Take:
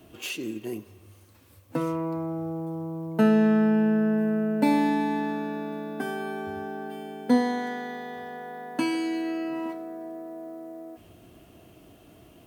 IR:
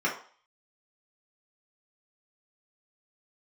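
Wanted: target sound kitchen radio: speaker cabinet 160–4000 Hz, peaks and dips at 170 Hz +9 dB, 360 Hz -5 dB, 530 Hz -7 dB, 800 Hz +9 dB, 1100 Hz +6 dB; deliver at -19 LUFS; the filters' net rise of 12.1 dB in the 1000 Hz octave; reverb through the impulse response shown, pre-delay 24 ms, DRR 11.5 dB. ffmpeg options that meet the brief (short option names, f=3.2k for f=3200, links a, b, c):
-filter_complex "[0:a]equalizer=f=1k:t=o:g=7,asplit=2[a][b];[1:a]atrim=start_sample=2205,adelay=24[c];[b][c]afir=irnorm=-1:irlink=0,volume=-22.5dB[d];[a][d]amix=inputs=2:normalize=0,highpass=160,equalizer=f=170:t=q:w=4:g=9,equalizer=f=360:t=q:w=4:g=-5,equalizer=f=530:t=q:w=4:g=-7,equalizer=f=800:t=q:w=4:g=9,equalizer=f=1.1k:t=q:w=4:g=6,lowpass=f=4k:w=0.5412,lowpass=f=4k:w=1.3066,volume=4.5dB"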